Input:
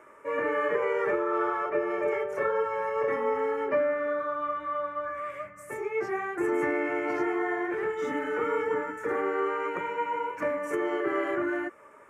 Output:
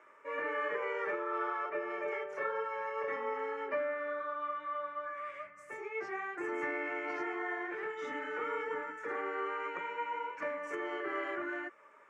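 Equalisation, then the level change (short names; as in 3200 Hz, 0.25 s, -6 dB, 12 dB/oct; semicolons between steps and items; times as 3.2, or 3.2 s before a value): HPF 86 Hz; air absorption 160 m; tilt +3.5 dB/oct; -6.0 dB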